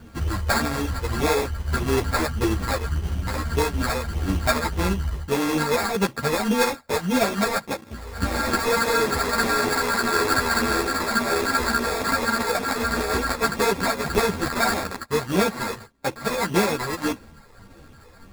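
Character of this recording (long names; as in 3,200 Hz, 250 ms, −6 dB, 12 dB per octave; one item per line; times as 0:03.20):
a buzz of ramps at a fixed pitch in blocks of 32 samples
phaser sweep stages 12, 1.7 Hz, lowest notch 230–3,100 Hz
aliases and images of a low sample rate 3,000 Hz, jitter 0%
a shimmering, thickened sound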